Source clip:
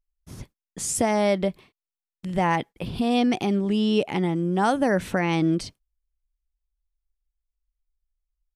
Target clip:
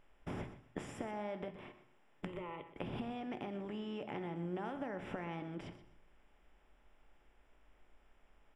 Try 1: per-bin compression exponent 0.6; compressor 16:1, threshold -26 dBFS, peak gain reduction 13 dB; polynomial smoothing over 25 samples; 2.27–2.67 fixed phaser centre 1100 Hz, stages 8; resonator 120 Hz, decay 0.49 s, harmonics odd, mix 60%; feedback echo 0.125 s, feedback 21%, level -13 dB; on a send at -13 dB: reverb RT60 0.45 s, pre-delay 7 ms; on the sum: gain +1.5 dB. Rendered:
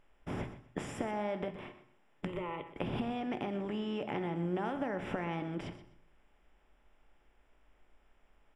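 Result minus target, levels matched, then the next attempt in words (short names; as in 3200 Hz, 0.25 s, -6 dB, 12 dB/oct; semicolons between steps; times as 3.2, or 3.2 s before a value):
compressor: peak gain reduction -6 dB
per-bin compression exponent 0.6; compressor 16:1, threshold -32.5 dBFS, peak gain reduction 19 dB; polynomial smoothing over 25 samples; 2.27–2.67 fixed phaser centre 1100 Hz, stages 8; resonator 120 Hz, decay 0.49 s, harmonics odd, mix 60%; feedback echo 0.125 s, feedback 21%, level -13 dB; on a send at -13 dB: reverb RT60 0.45 s, pre-delay 7 ms; on the sum: gain +1.5 dB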